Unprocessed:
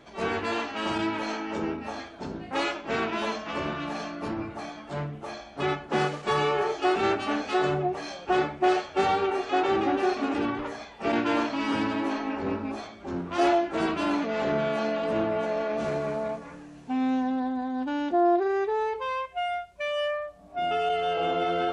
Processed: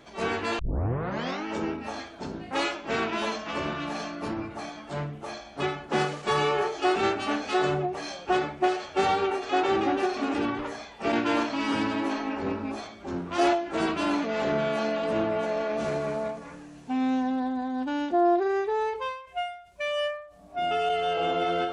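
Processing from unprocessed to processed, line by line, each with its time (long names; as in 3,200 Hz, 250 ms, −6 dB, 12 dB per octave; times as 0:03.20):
0:00.59: tape start 0.86 s
whole clip: high-shelf EQ 4,600 Hz +5 dB; every ending faded ahead of time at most 100 dB per second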